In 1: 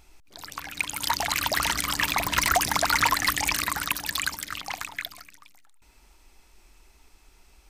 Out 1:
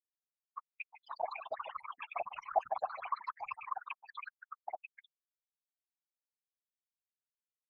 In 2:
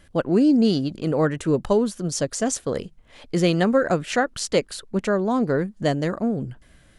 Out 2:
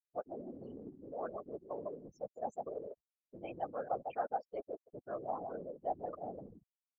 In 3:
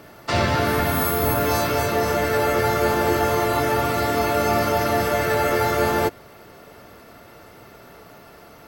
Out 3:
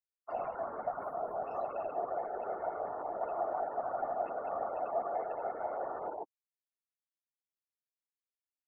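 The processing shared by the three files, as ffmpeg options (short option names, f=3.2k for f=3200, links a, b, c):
-filter_complex "[0:a]asplit=2[a][b];[b]adelay=153,lowpass=f=2.8k:p=1,volume=-8dB,asplit=2[c][d];[d]adelay=153,lowpass=f=2.8k:p=1,volume=0.24,asplit=2[e][f];[f]adelay=153,lowpass=f=2.8k:p=1,volume=0.24[g];[c][e][g]amix=inputs=3:normalize=0[h];[a][h]amix=inputs=2:normalize=0,afftfilt=real='re*gte(hypot(re,im),0.141)':imag='im*gte(hypot(re,im),0.141)':win_size=1024:overlap=0.75,areverse,acompressor=threshold=-31dB:ratio=6,areverse,asplit=3[i][j][k];[i]bandpass=f=730:t=q:w=8,volume=0dB[l];[j]bandpass=f=1.09k:t=q:w=8,volume=-6dB[m];[k]bandpass=f=2.44k:t=q:w=8,volume=-9dB[n];[l][m][n]amix=inputs=3:normalize=0,aemphasis=mode=reproduction:type=50fm,afftfilt=real='hypot(re,im)*cos(2*PI*random(0))':imag='hypot(re,im)*sin(2*PI*random(1))':win_size=512:overlap=0.75,volume=11dB"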